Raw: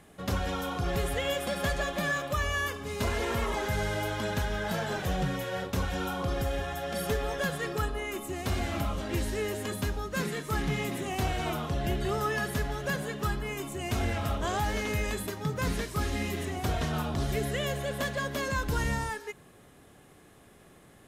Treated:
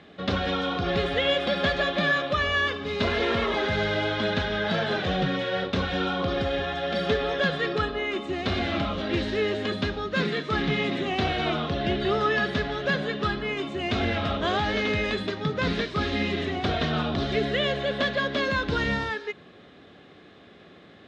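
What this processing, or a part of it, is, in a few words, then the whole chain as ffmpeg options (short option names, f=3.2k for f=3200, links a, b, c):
guitar cabinet: -af "highpass=110,equalizer=f=130:t=q:w=4:g=-8,equalizer=f=920:t=q:w=4:g=-7,equalizer=f=3.7k:t=q:w=4:g=6,lowpass=f=4.3k:w=0.5412,lowpass=f=4.3k:w=1.3066,volume=7dB"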